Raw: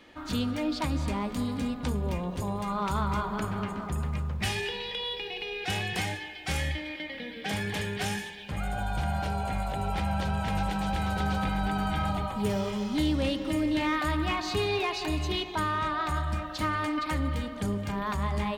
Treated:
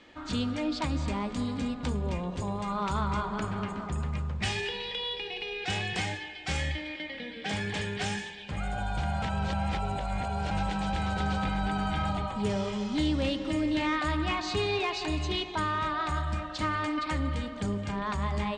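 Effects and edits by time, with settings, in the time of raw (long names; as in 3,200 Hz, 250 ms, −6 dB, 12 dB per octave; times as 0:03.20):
0:09.22–0:10.51: reverse
whole clip: elliptic low-pass filter 8,100 Hz, stop band 80 dB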